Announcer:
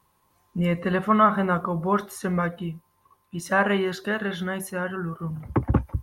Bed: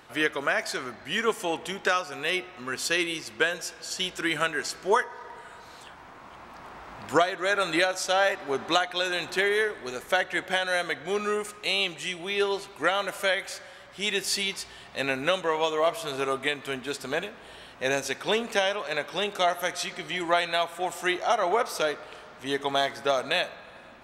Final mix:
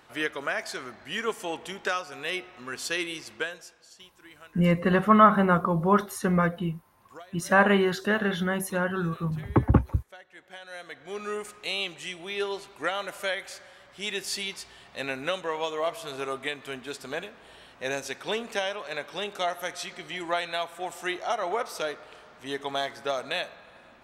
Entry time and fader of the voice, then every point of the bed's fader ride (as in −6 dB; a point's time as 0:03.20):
4.00 s, +1.5 dB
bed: 0:03.31 −4 dB
0:04.13 −24 dB
0:10.23 −24 dB
0:11.36 −4.5 dB